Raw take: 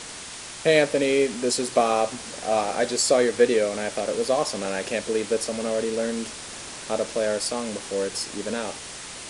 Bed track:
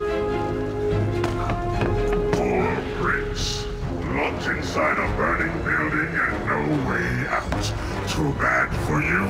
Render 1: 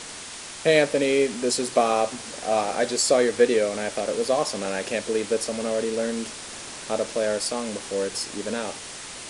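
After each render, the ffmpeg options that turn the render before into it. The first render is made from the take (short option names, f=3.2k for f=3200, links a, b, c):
-af "bandreject=f=60:t=h:w=4,bandreject=f=120:t=h:w=4,bandreject=f=180:t=h:w=4"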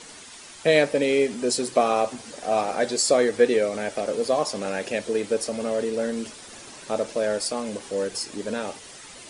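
-af "afftdn=nr=9:nf=-38"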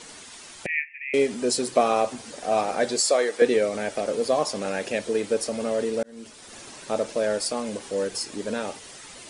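-filter_complex "[0:a]asettb=1/sr,asplit=3[a][b][c];[a]atrim=end=0.664[d];[b]atrim=start=0.66:end=1.14,asetpts=PTS-STARTPTS,afade=t=in:d=0.004:c=qsin,afade=t=out:st=0.476:d=0.004:c=qsin,asuperpass=centerf=2200:order=12:qfactor=2.4[e];[c]atrim=start=1.136[f];[d][e]acrossfade=d=0.004:c1=hsin:c2=qsin[g];[g][f]acrossfade=d=0.004:c1=qsin:c2=hsin,asettb=1/sr,asplit=3[h][i][j];[h]atrim=end=3.004[k];[i]atrim=start=3:end=3.42,asetpts=PTS-STARTPTS,afade=t=in:d=0.004:c=qsin,afade=t=out:st=0.416:d=0.004:c=qsin,highpass=460[l];[j]atrim=start=3.416[m];[k][l]acrossfade=d=0.004:c1=hsin:c2=qsin[n];[n][m]acrossfade=d=0.004:c1=qsin:c2=hsin,asplit=2[o][p];[o]atrim=end=6.03,asetpts=PTS-STARTPTS,afade=t=out:st=6.026:d=0.004:c=hsin[q];[p]atrim=start=6.03,asetpts=PTS-STARTPTS,afade=t=in:d=0.56[r];[q][r]concat=n=2:v=0:a=1"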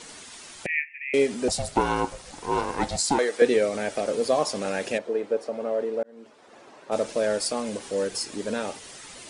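-filter_complex "[0:a]asettb=1/sr,asplit=3[a][b][c];[a]atrim=end=1.484[d];[b]atrim=start=1.48:end=3.19,asetpts=PTS-STARTPTS,afade=t=in:d=0.004:c=qsin,afade=t=out:st=1.706:d=0.004:c=qsin,aeval=exprs='val(0)*sin(2*PI*280*n/s)':c=same[e];[c]atrim=start=3.186[f];[d][e]acrossfade=d=0.004:c1=hsin:c2=qsin[g];[g][f]acrossfade=d=0.004:c1=qsin:c2=hsin,asplit=3[h][i][j];[h]afade=t=out:st=4.97:d=0.02[k];[i]bandpass=f=650:t=q:w=0.8,afade=t=in:st=4.97:d=0.02,afade=t=out:st=6.91:d=0.02[l];[j]afade=t=in:st=6.91:d=0.02[m];[k][l][m]amix=inputs=3:normalize=0"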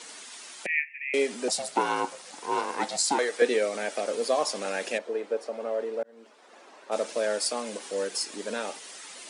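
-af "highpass=f=190:w=0.5412,highpass=f=190:w=1.3066,lowshelf=f=380:g=-9.5"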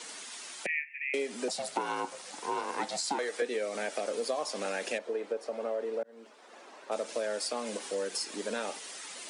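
-filter_complex "[0:a]acrossover=split=180|4600[a][b][c];[c]alimiter=level_in=0.5dB:limit=-24dB:level=0:latency=1:release=224,volume=-0.5dB[d];[a][b][d]amix=inputs=3:normalize=0,acompressor=threshold=-30dB:ratio=4"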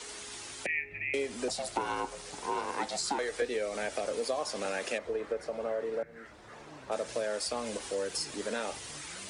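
-filter_complex "[1:a]volume=-30.5dB[a];[0:a][a]amix=inputs=2:normalize=0"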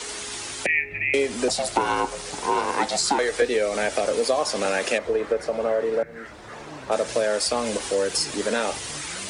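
-af "volume=10.5dB"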